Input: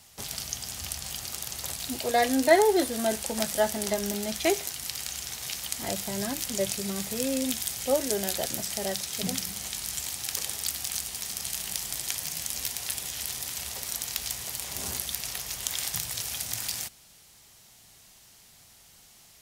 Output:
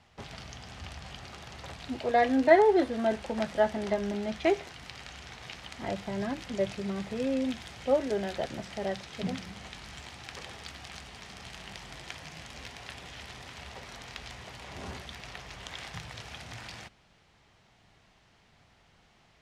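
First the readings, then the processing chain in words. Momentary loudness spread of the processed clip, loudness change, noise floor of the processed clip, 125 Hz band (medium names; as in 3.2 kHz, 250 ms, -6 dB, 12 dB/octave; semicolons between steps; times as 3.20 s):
17 LU, -1.5 dB, -64 dBFS, 0.0 dB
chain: low-pass 2.3 kHz 12 dB/octave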